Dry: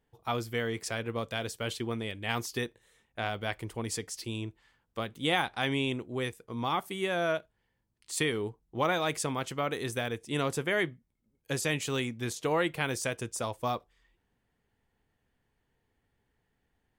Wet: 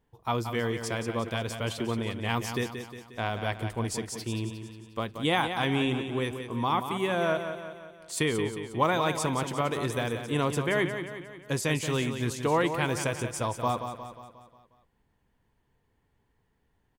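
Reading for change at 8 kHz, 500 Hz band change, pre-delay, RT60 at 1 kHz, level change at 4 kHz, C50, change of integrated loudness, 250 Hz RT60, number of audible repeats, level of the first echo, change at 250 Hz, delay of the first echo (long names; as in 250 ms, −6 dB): +1.0 dB, +3.0 dB, no reverb audible, no reverb audible, +1.0 dB, no reverb audible, +3.0 dB, no reverb audible, 5, −8.5 dB, +4.5 dB, 179 ms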